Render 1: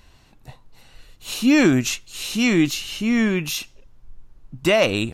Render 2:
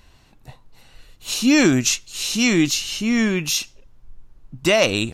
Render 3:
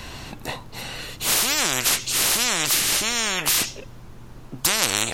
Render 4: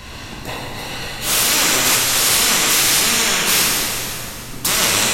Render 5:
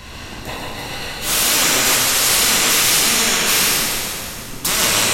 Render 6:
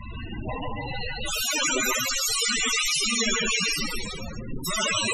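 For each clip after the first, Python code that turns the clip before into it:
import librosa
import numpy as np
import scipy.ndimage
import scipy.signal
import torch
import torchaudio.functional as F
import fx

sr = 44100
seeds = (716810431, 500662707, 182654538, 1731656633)

y1 = fx.dynamic_eq(x, sr, hz=5800.0, q=1.0, threshold_db=-42.0, ratio=4.0, max_db=8)
y2 = fx.spectral_comp(y1, sr, ratio=10.0)
y2 = y2 * librosa.db_to_amplitude(2.0)
y3 = fx.rev_plate(y2, sr, seeds[0], rt60_s=3.2, hf_ratio=0.8, predelay_ms=0, drr_db=-6.0)
y4 = y3 + 10.0 ** (-5.0 / 20.0) * np.pad(y3, (int(145 * sr / 1000.0), 0))[:len(y3)]
y4 = y4 * librosa.db_to_amplitude(-1.0)
y5 = fx.spec_topn(y4, sr, count=16)
y5 = y5 * librosa.db_to_amplitude(1.0)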